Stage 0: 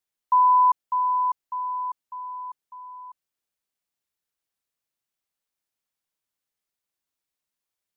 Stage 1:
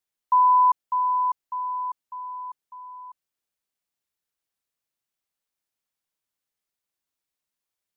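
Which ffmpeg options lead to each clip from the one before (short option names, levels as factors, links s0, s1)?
-af anull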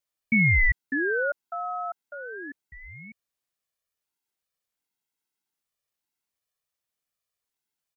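-af "aecho=1:1:1.7:0.9,aeval=exprs='val(0)*sin(2*PI*800*n/s+800*0.65/0.29*sin(2*PI*0.29*n/s))':c=same"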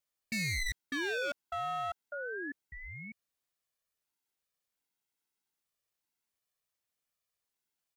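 -af "asoftclip=type=hard:threshold=0.0282,volume=0.841"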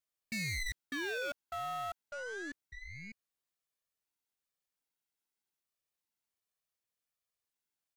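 -af "aeval=exprs='0.0251*(cos(1*acos(clip(val(0)/0.0251,-1,1)))-cos(1*PI/2))+0.00316*(cos(2*acos(clip(val(0)/0.0251,-1,1)))-cos(2*PI/2))+0.000447*(cos(7*acos(clip(val(0)/0.0251,-1,1)))-cos(7*PI/2))+0.00282*(cos(8*acos(clip(val(0)/0.0251,-1,1)))-cos(8*PI/2))':c=same,volume=0.708"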